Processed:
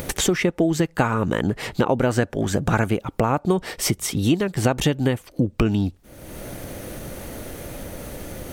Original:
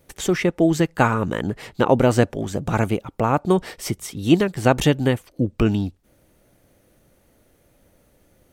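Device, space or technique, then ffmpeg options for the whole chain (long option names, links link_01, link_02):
upward and downward compression: -filter_complex "[0:a]acompressor=mode=upward:threshold=-22dB:ratio=2.5,acompressor=threshold=-21dB:ratio=6,asettb=1/sr,asplit=3[link_01][link_02][link_03];[link_01]atrim=end=2.004[link_04];[link_02]atrim=start=2:end=2.99,asetpts=PTS-STARTPTS,afade=type=in:duration=0.004:curve=qsin,afade=type=out:start_time=0.986:duration=0.004:curve=qsin,equalizer=frequency=1600:width=3.5:gain=6[link_05];[link_03]atrim=start=2.986[link_06];[link_04][link_05]acrossfade=duration=0.004:curve1=hsin:curve2=qsin[link_07];[link_07][link_06]acrossfade=duration=0.004:curve1=qsin:curve2=hsin,volume=5dB"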